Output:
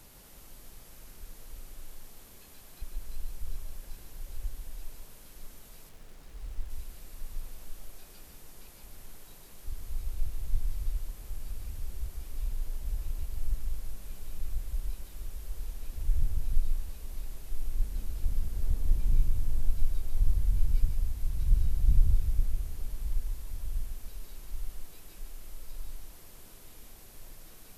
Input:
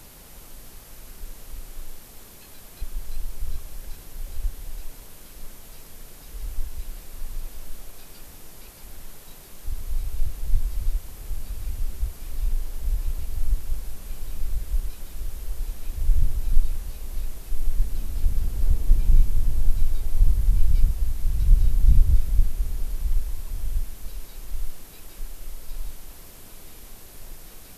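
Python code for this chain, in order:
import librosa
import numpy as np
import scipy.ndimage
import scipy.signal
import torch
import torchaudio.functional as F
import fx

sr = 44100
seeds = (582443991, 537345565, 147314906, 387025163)

y = x + 10.0 ** (-6.0 / 20.0) * np.pad(x, (int(147 * sr / 1000.0), 0))[:len(x)]
y = fx.backlash(y, sr, play_db=-42.0, at=(5.89, 6.7))
y = F.gain(torch.from_numpy(y), -8.0).numpy()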